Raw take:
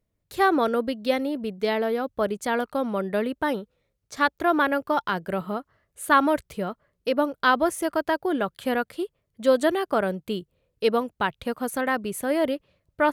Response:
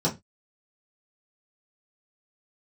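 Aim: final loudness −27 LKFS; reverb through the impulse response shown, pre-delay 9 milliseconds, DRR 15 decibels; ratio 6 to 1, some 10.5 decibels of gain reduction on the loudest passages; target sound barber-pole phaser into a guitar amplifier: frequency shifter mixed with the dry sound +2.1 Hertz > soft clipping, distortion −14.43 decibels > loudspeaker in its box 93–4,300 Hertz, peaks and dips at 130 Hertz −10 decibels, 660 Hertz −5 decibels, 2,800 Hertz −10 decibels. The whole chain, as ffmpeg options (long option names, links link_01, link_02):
-filter_complex "[0:a]acompressor=threshold=-25dB:ratio=6,asplit=2[link_01][link_02];[1:a]atrim=start_sample=2205,adelay=9[link_03];[link_02][link_03]afir=irnorm=-1:irlink=0,volume=-26dB[link_04];[link_01][link_04]amix=inputs=2:normalize=0,asplit=2[link_05][link_06];[link_06]afreqshift=2.1[link_07];[link_05][link_07]amix=inputs=2:normalize=1,asoftclip=threshold=-26dB,highpass=93,equalizer=frequency=130:width_type=q:width=4:gain=-10,equalizer=frequency=660:width_type=q:width=4:gain=-5,equalizer=frequency=2800:width_type=q:width=4:gain=-10,lowpass=frequency=4300:width=0.5412,lowpass=frequency=4300:width=1.3066,volume=9.5dB"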